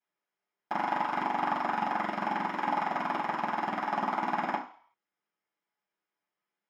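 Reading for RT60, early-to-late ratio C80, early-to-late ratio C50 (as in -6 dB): 0.50 s, 12.5 dB, 8.0 dB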